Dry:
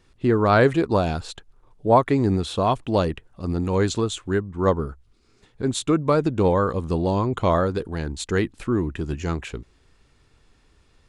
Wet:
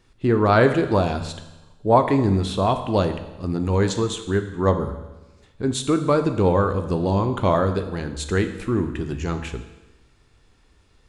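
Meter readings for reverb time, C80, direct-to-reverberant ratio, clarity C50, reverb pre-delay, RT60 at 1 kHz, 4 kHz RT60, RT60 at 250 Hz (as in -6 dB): 1.1 s, 12.0 dB, 7.5 dB, 10.5 dB, 12 ms, 1.1 s, 1.1 s, 1.1 s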